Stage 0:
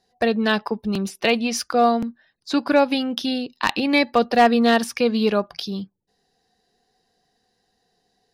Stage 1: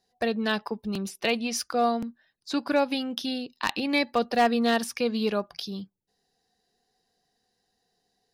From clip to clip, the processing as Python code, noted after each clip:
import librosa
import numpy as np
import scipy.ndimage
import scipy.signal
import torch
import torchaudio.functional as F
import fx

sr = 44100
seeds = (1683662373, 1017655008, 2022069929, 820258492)

y = fx.high_shelf(x, sr, hz=5300.0, db=5.5)
y = F.gain(torch.from_numpy(y), -7.0).numpy()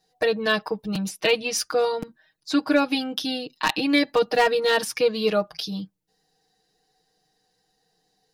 y = x + 0.98 * np.pad(x, (int(6.4 * sr / 1000.0), 0))[:len(x)]
y = F.gain(torch.from_numpy(y), 2.0).numpy()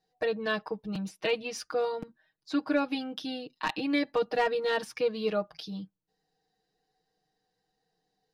y = fx.lowpass(x, sr, hz=2800.0, slope=6)
y = F.gain(torch.from_numpy(y), -7.0).numpy()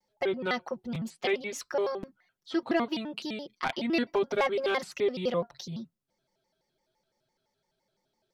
y = fx.vibrato_shape(x, sr, shape='square', rate_hz=5.9, depth_cents=250.0)